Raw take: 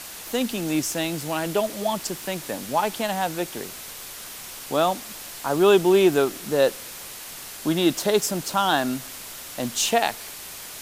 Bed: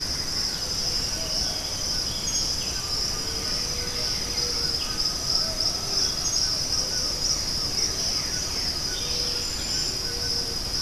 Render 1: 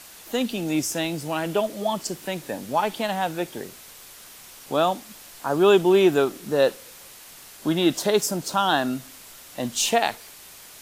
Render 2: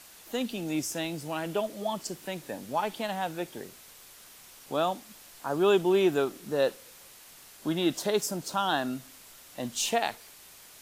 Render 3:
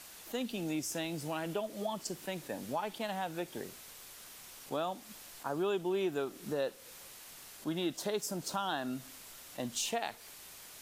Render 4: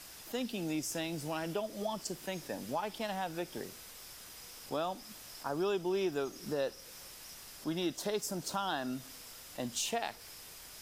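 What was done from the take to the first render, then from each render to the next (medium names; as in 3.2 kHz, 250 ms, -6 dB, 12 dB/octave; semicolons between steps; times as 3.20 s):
noise print and reduce 7 dB
trim -6.5 dB
compression 2.5:1, threshold -35 dBFS, peak gain reduction 11 dB; attacks held to a fixed rise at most 440 dB/s
add bed -30.5 dB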